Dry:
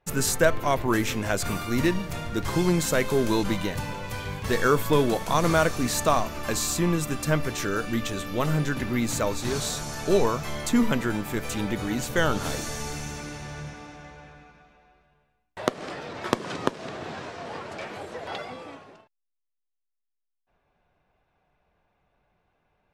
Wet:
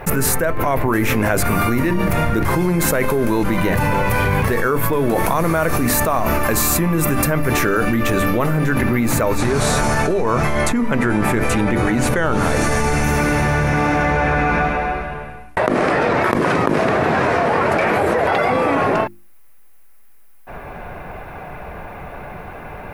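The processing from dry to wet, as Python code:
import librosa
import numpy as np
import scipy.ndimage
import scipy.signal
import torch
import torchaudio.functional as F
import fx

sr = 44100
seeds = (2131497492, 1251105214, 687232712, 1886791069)

y = fx.high_shelf(x, sr, hz=10000.0, db=5.5, at=(5.2, 7.54))
y = fx.lowpass(y, sr, hz=10000.0, slope=24, at=(9.38, 13.04))
y = fx.lowpass(y, sr, hz=11000.0, slope=24, at=(14.13, 16.17))
y = fx.band_shelf(y, sr, hz=4900.0, db=-11.0, octaves=1.7)
y = fx.hum_notches(y, sr, base_hz=50, count=7)
y = fx.env_flatten(y, sr, amount_pct=100)
y = y * 10.0 ** (-1.0 / 20.0)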